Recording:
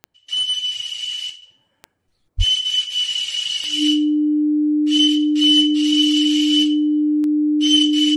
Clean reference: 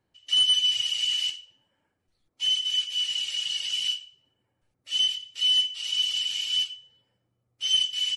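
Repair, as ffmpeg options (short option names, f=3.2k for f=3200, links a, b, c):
-filter_complex "[0:a]adeclick=t=4,bandreject=f=300:w=30,asplit=3[a][b][c];[a]afade=t=out:st=2.37:d=0.02[d];[b]highpass=f=140:w=0.5412,highpass=f=140:w=1.3066,afade=t=in:st=2.37:d=0.02,afade=t=out:st=2.49:d=0.02[e];[c]afade=t=in:st=2.49:d=0.02[f];[d][e][f]amix=inputs=3:normalize=0,asetnsamples=n=441:p=0,asendcmd='1.42 volume volume -6.5dB',volume=0dB"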